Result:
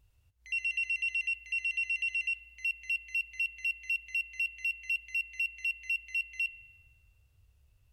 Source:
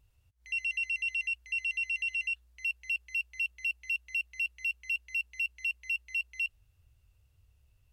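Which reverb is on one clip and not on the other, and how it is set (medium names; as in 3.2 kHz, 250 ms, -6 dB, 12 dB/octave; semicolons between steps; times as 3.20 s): spring tank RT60 1.3 s, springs 41 ms, chirp 60 ms, DRR 15 dB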